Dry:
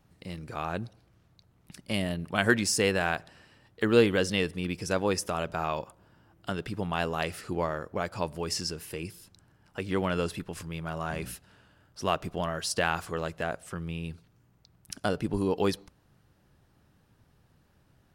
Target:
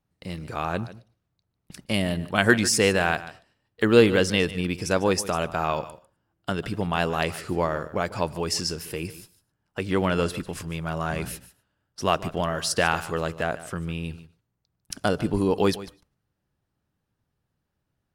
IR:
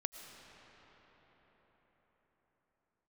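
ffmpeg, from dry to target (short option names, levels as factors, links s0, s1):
-filter_complex "[0:a]agate=range=0.112:threshold=0.00282:ratio=16:detection=peak,asplit=2[s0][s1];[1:a]atrim=start_sample=2205,afade=t=out:st=0.16:d=0.01,atrim=end_sample=7497,adelay=148[s2];[s1][s2]afir=irnorm=-1:irlink=0,volume=0.2[s3];[s0][s3]amix=inputs=2:normalize=0,volume=1.78"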